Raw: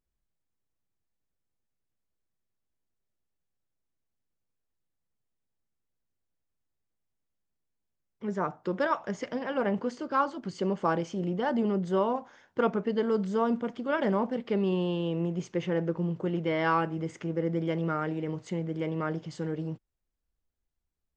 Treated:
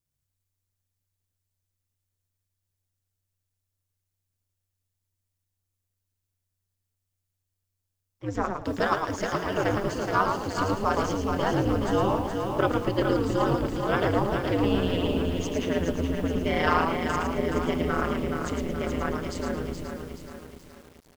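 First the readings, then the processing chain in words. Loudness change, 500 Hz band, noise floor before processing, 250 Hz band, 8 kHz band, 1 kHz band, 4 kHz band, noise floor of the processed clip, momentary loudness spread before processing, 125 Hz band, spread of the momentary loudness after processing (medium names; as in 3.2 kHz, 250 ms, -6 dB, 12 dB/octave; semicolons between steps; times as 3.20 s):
+3.5 dB, +3.0 dB, -83 dBFS, +2.5 dB, no reading, +4.5 dB, +8.5 dB, -82 dBFS, 7 LU, +4.0 dB, 7 LU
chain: treble shelf 3.6 kHz +12 dB; ring modulator 94 Hz; in parallel at -4.5 dB: crossover distortion -47 dBFS; on the sum: frequency-shifting echo 110 ms, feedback 31%, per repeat -85 Hz, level -5 dB; bit-crushed delay 423 ms, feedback 55%, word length 8-bit, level -5.5 dB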